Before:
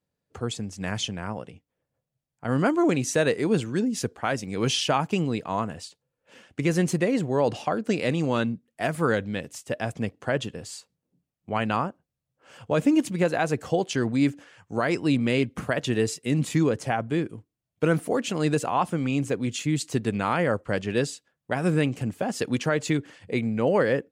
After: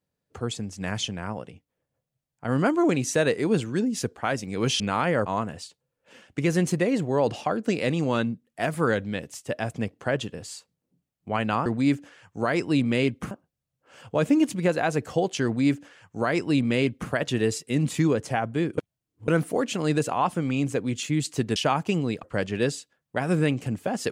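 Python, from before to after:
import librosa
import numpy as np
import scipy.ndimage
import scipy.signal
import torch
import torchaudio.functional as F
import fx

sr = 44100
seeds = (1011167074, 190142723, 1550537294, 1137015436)

y = fx.edit(x, sr, fx.swap(start_s=4.8, length_s=0.67, other_s=20.12, other_length_s=0.46),
    fx.duplicate(start_s=14.01, length_s=1.65, to_s=11.87),
    fx.reverse_span(start_s=17.34, length_s=0.5), tone=tone)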